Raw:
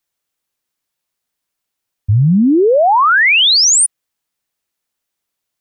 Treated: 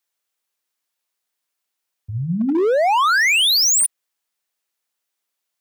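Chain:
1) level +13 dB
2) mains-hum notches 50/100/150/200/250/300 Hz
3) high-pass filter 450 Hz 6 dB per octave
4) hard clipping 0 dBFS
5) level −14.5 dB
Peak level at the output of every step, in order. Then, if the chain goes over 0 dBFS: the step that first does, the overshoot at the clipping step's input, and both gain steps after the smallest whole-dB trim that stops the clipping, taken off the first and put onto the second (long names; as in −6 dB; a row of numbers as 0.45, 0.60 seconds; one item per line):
+6.0, +8.5, +6.0, 0.0, −14.5 dBFS
step 1, 6.0 dB
step 1 +7 dB, step 5 −8.5 dB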